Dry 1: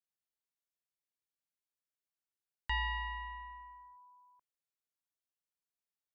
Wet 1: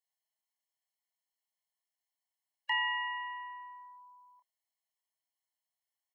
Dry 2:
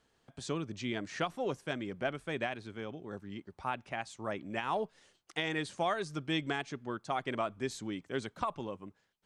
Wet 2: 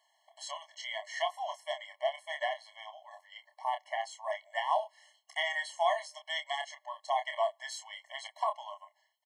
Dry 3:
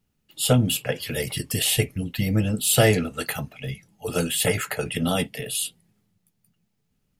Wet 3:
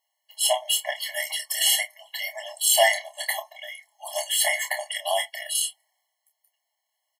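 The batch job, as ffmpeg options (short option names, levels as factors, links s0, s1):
-filter_complex "[0:a]asplit=2[s0][s1];[s1]adelay=28,volume=0.447[s2];[s0][s2]amix=inputs=2:normalize=0,afftfilt=real='re*eq(mod(floor(b*sr/1024/560),2),1)':imag='im*eq(mod(floor(b*sr/1024/560),2),1)':win_size=1024:overlap=0.75,volume=1.68"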